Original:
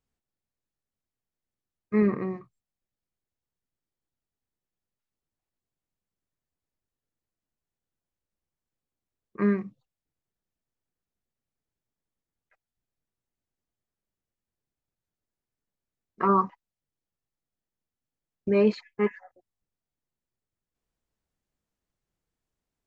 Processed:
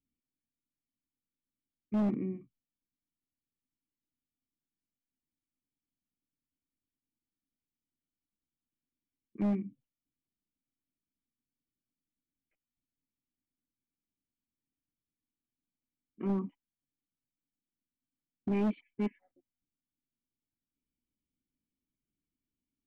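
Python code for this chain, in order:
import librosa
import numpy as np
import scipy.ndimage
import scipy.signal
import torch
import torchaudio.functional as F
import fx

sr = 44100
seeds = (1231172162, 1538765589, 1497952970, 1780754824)

y = fx.formant_cascade(x, sr, vowel='i')
y = np.clip(10.0 ** (31.5 / 20.0) * y, -1.0, 1.0) / 10.0 ** (31.5 / 20.0)
y = y * librosa.db_to_amplitude(5.0)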